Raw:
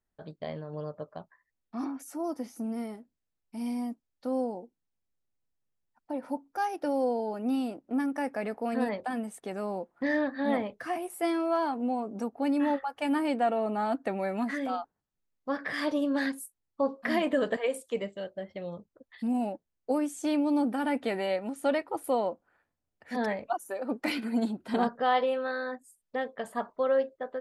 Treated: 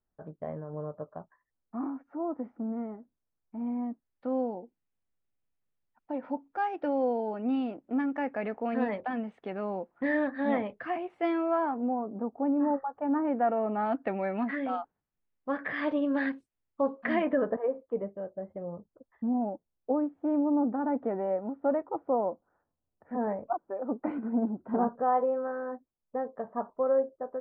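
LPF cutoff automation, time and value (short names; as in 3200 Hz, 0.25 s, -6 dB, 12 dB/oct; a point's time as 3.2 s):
LPF 24 dB/oct
3.67 s 1500 Hz
4.44 s 3000 Hz
11.26 s 3000 Hz
12.22 s 1200 Hz
13.02 s 1200 Hz
13.93 s 2800 Hz
17.13 s 2800 Hz
17.54 s 1200 Hz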